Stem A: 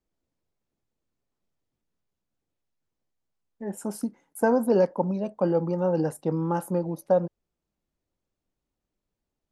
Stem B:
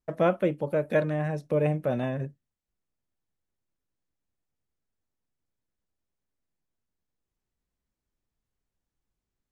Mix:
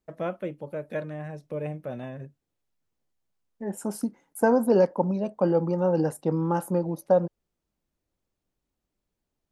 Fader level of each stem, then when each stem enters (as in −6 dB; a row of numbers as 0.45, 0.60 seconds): +1.0, −7.5 decibels; 0.00, 0.00 seconds